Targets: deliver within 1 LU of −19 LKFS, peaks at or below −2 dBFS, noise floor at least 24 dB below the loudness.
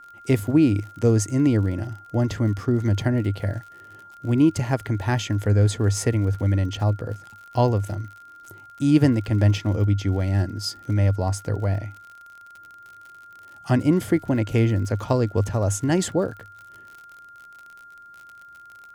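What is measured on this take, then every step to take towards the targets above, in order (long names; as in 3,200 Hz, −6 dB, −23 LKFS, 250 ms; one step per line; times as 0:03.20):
crackle rate 56 per second; interfering tone 1,400 Hz; level of the tone −43 dBFS; integrated loudness −22.5 LKFS; sample peak −6.0 dBFS; target loudness −19.0 LKFS
→ click removal
notch filter 1,400 Hz, Q 30
level +3.5 dB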